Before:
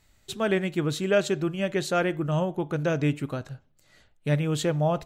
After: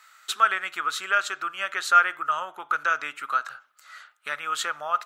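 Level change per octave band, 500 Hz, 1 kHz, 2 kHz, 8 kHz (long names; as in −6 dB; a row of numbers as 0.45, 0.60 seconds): −13.5, +10.5, +8.5, +3.0 decibels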